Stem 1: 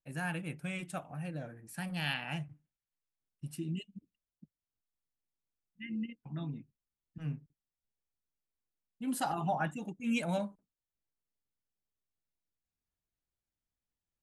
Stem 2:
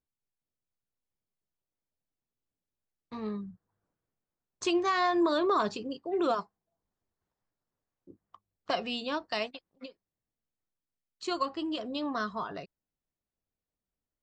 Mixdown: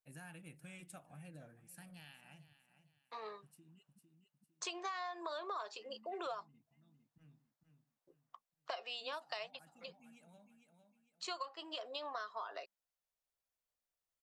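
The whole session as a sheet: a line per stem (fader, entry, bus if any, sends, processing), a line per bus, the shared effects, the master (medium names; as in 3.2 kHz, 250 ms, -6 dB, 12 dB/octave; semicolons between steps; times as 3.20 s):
-11.5 dB, 0.00 s, no send, echo send -18 dB, treble shelf 5.7 kHz +10 dB; compression 6:1, threshold -38 dBFS, peak gain reduction 10 dB; auto duck -11 dB, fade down 1.70 s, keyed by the second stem
-1.5 dB, 0.00 s, no send, no echo send, high-pass 530 Hz 24 dB/octave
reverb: none
echo: feedback delay 454 ms, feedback 35%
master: compression 6:1, threshold -40 dBFS, peak gain reduction 14.5 dB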